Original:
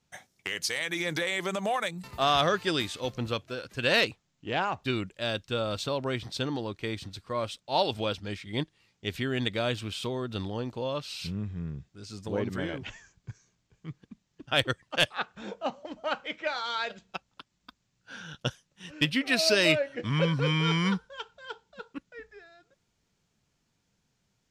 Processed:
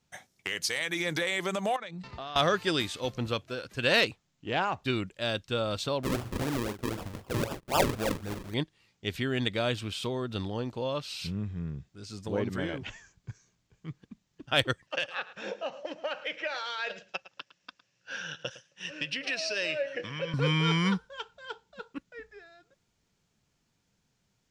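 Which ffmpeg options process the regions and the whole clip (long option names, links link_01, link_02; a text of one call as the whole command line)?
ffmpeg -i in.wav -filter_complex "[0:a]asettb=1/sr,asplit=3[link_01][link_02][link_03];[link_01]atrim=end=1.764[link_04];[link_02]atrim=start=1.76:end=2.36,asetpts=PTS-STARTPTS,afade=type=in:duration=0.004:curve=qsin,afade=type=out:start_time=0.596:duration=0.004:curve=qsin,lowpass=frequency=5400:width=0.5412,lowpass=frequency=5400:width=1.3066,acompressor=threshold=-36dB:ratio=8:attack=3.2:release=140:knee=1:detection=peak[link_05];[link_03]atrim=start=2.356[link_06];[link_04][link_05]acrossfade=duration=0.004:curve1=hsin:curve2=qsin[link_07];[link_07][link_06]acrossfade=duration=0.004:curve1=qsin:curve2=hsin,asettb=1/sr,asplit=3[link_08][link_09][link_10];[link_08]atrim=end=6.034[link_11];[link_09]atrim=start=6.03:end=8.54,asetpts=PTS-STARTPTS,afade=type=in:duration=0.004:curve=qsin,afade=type=out:start_time=2.506:duration=0.004:curve=qsin,highshelf=frequency=5000:width_type=q:width=1.5:gain=9.5,asplit=2[link_12][link_13];[link_13]adelay=42,volume=-9dB[link_14];[link_12][link_14]amix=inputs=2:normalize=0,atrim=end_sample=110691,acrusher=samples=42:mix=1:aa=0.000001:lfo=1:lforange=42:lforate=3.9[link_15];[link_10]atrim=start=8.536[link_16];[link_11][link_15]acrossfade=duration=0.004:curve1=hsin:curve2=qsin[link_17];[link_17][link_16]acrossfade=duration=0.004:curve1=qsin:curve2=hsin,asettb=1/sr,asplit=3[link_18][link_19][link_20];[link_18]atrim=end=14.874[link_21];[link_19]atrim=start=14.87:end=20.34,asetpts=PTS-STARTPTS,afade=type=in:duration=0.004:curve=qsin,afade=type=out:start_time=5.466:duration=0.004:curve=qsin,acompressor=threshold=-33dB:ratio=12:attack=3.2:release=140:knee=1:detection=peak,highpass=150,equalizer=frequency=230:width_type=q:width=4:gain=-8,equalizer=frequency=540:width_type=q:width=4:gain=9,equalizer=frequency=1700:width_type=q:width=4:gain=8,equalizer=frequency=2700:width_type=q:width=4:gain=10,equalizer=frequency=5500:width_type=q:width=4:gain=8,lowpass=frequency=8000:width=0.5412,lowpass=frequency=8000:width=1.3066,aecho=1:1:109:0.15,atrim=end_sample=241227[link_22];[link_20]atrim=start=20.336[link_23];[link_21][link_22]acrossfade=duration=0.004:curve1=hsin:curve2=qsin[link_24];[link_24][link_23]acrossfade=duration=0.004:curve1=qsin:curve2=hsin" out.wav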